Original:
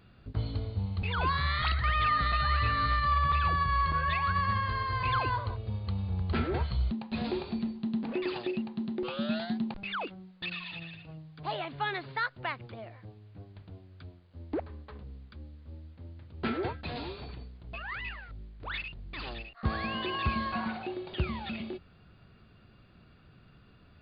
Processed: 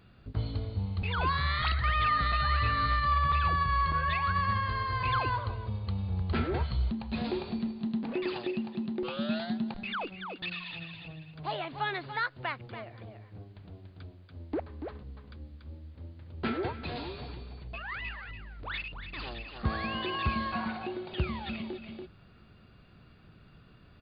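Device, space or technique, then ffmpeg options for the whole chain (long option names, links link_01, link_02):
ducked delay: -filter_complex "[0:a]asplit=3[link_01][link_02][link_03];[link_02]adelay=286,volume=-4.5dB[link_04];[link_03]apad=whole_len=1071703[link_05];[link_04][link_05]sidechaincompress=threshold=-45dB:ratio=10:attack=5.3:release=196[link_06];[link_01][link_06]amix=inputs=2:normalize=0"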